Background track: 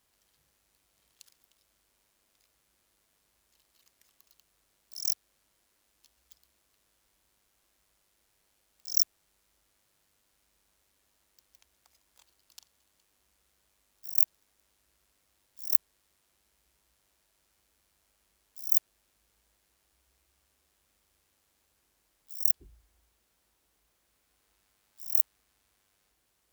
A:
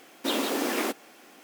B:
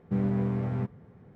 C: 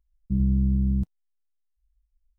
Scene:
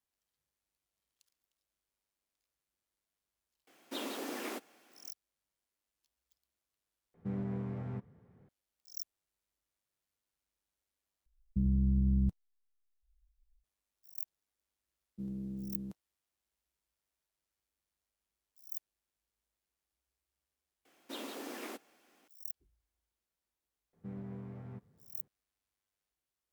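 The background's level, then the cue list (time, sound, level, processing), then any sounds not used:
background track -18 dB
3.67 add A -12.5 dB
7.14 replace with B -10 dB
11.26 replace with C -3 dB + limiter -19.5 dBFS
14.88 add C -1.5 dB + HPF 410 Hz
20.85 add A -16 dB
23.93 add B -17 dB

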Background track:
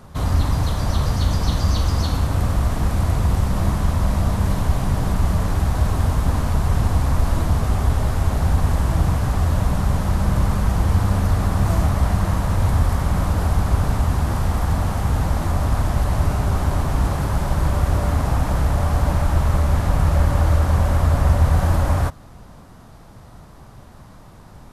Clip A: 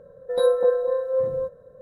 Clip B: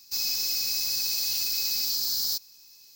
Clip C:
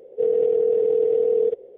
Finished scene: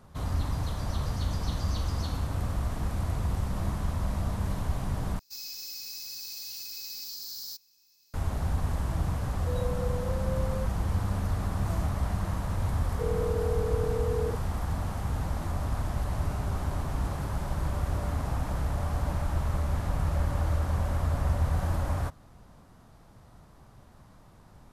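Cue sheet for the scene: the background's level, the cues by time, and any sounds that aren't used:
background track -11 dB
5.19 replace with B -12 dB
9.18 add A -6 dB + compressor 3:1, threshold -30 dBFS
12.81 add C -12 dB

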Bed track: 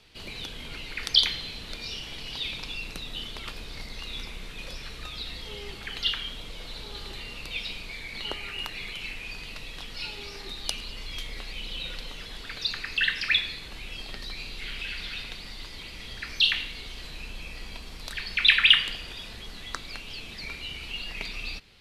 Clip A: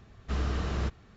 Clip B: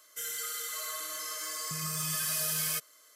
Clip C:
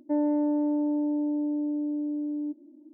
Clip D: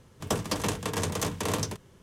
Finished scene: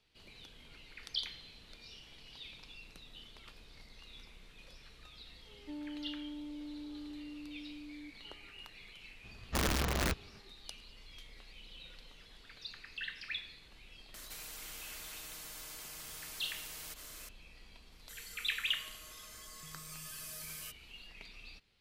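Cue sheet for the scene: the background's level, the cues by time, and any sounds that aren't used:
bed track -17 dB
5.58 add C -13 dB + bell 620 Hz -14.5 dB 1.5 oct
9.24 add A -2 dB + wrapped overs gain 24.5 dB
14.14 add B -16 dB + spectral compressor 10:1
17.92 add B -15 dB
not used: D

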